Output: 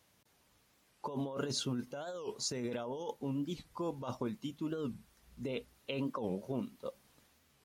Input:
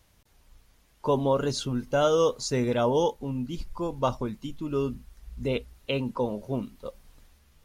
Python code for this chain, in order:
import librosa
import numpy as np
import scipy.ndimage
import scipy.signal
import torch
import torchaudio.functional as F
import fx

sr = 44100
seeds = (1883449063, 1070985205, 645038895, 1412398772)

y = scipy.signal.sosfilt(scipy.signal.butter(2, 140.0, 'highpass', fs=sr, output='sos'), x)
y = fx.over_compress(y, sr, threshold_db=-30.0, ratio=-1.0)
y = fx.record_warp(y, sr, rpm=45.0, depth_cents=250.0)
y = F.gain(torch.from_numpy(y), -7.5).numpy()